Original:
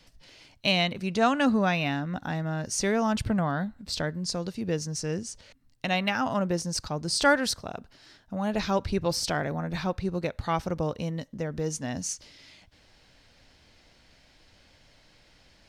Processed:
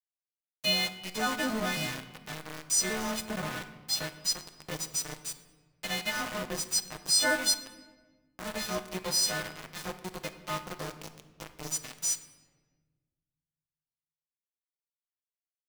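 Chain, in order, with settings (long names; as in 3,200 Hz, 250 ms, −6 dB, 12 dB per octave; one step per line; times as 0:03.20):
every partial snapped to a pitch grid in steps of 3 semitones
centre clipping without the shift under −24 dBFS
rectangular room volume 1,100 cubic metres, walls mixed, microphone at 0.62 metres
level −7.5 dB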